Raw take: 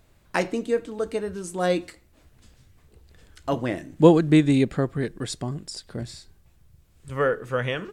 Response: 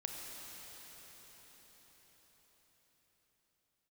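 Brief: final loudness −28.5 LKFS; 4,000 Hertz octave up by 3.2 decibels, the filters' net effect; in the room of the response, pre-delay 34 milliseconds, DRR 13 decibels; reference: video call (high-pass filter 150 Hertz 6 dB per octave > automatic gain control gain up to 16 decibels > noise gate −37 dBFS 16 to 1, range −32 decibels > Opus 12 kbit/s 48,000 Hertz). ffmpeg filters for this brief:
-filter_complex "[0:a]equalizer=frequency=4000:width_type=o:gain=4,asplit=2[link_01][link_02];[1:a]atrim=start_sample=2205,adelay=34[link_03];[link_02][link_03]afir=irnorm=-1:irlink=0,volume=-13dB[link_04];[link_01][link_04]amix=inputs=2:normalize=0,highpass=frequency=150:poles=1,dynaudnorm=maxgain=16dB,agate=range=-32dB:threshold=-37dB:ratio=16,volume=-3.5dB" -ar 48000 -c:a libopus -b:a 12k

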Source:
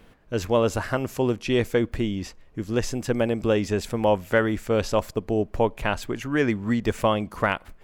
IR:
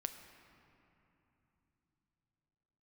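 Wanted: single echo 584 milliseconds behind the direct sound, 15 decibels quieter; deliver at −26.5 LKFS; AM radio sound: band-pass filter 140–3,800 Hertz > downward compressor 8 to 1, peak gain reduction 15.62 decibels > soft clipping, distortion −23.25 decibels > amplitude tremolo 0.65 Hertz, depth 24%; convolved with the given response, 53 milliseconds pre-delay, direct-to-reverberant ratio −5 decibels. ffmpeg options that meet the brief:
-filter_complex "[0:a]aecho=1:1:584:0.178,asplit=2[link_01][link_02];[1:a]atrim=start_sample=2205,adelay=53[link_03];[link_02][link_03]afir=irnorm=-1:irlink=0,volume=6.5dB[link_04];[link_01][link_04]amix=inputs=2:normalize=0,highpass=140,lowpass=3800,acompressor=threshold=-25dB:ratio=8,asoftclip=threshold=-16.5dB,tremolo=f=0.65:d=0.24,volume=5dB"

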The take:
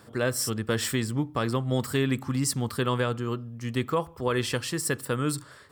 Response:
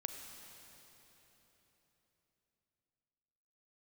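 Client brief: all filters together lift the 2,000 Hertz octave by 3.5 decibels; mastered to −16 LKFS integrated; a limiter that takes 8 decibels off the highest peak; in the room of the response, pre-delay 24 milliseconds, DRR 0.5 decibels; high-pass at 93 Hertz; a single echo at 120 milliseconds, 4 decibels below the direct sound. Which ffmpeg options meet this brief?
-filter_complex "[0:a]highpass=93,equalizer=frequency=2000:width_type=o:gain=4.5,alimiter=limit=-18.5dB:level=0:latency=1,aecho=1:1:120:0.631,asplit=2[link_01][link_02];[1:a]atrim=start_sample=2205,adelay=24[link_03];[link_02][link_03]afir=irnorm=-1:irlink=0,volume=0.5dB[link_04];[link_01][link_04]amix=inputs=2:normalize=0,volume=10dB"

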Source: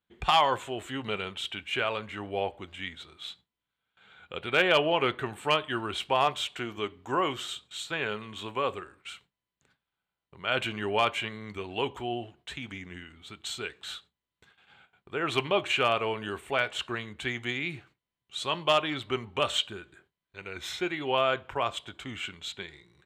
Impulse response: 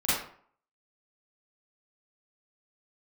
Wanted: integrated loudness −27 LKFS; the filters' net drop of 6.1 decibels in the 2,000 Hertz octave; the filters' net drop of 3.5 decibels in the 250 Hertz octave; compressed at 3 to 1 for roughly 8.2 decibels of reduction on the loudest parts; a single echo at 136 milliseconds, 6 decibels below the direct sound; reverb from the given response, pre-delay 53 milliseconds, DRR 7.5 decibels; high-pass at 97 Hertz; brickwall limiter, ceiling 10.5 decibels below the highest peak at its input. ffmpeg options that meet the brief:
-filter_complex "[0:a]highpass=97,equalizer=frequency=250:width_type=o:gain=-5,equalizer=frequency=2000:width_type=o:gain=-8.5,acompressor=threshold=-32dB:ratio=3,alimiter=level_in=4.5dB:limit=-24dB:level=0:latency=1,volume=-4.5dB,aecho=1:1:136:0.501,asplit=2[link_01][link_02];[1:a]atrim=start_sample=2205,adelay=53[link_03];[link_02][link_03]afir=irnorm=-1:irlink=0,volume=-19dB[link_04];[link_01][link_04]amix=inputs=2:normalize=0,volume=12dB"

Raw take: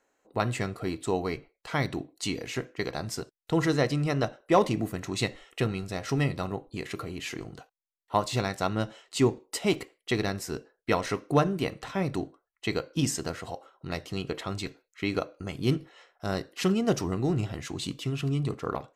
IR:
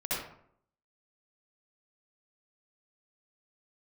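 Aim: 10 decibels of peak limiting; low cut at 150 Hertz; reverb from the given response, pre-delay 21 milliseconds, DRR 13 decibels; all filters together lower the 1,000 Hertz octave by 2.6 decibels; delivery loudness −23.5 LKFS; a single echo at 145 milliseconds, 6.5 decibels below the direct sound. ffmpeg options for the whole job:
-filter_complex "[0:a]highpass=150,equalizer=frequency=1000:width_type=o:gain=-3.5,alimiter=limit=-19.5dB:level=0:latency=1,aecho=1:1:145:0.473,asplit=2[link_01][link_02];[1:a]atrim=start_sample=2205,adelay=21[link_03];[link_02][link_03]afir=irnorm=-1:irlink=0,volume=-19.5dB[link_04];[link_01][link_04]amix=inputs=2:normalize=0,volume=9.5dB"

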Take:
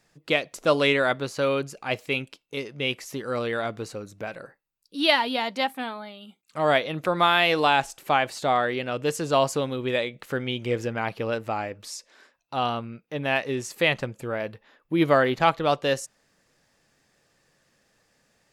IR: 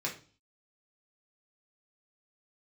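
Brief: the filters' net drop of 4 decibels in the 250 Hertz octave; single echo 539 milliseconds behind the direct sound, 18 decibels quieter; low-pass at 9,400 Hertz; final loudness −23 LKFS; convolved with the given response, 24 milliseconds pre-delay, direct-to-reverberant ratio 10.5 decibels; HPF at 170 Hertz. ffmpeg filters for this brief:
-filter_complex "[0:a]highpass=170,lowpass=9400,equalizer=frequency=250:width_type=o:gain=-4.5,aecho=1:1:539:0.126,asplit=2[link_01][link_02];[1:a]atrim=start_sample=2205,adelay=24[link_03];[link_02][link_03]afir=irnorm=-1:irlink=0,volume=-14.5dB[link_04];[link_01][link_04]amix=inputs=2:normalize=0,volume=2.5dB"

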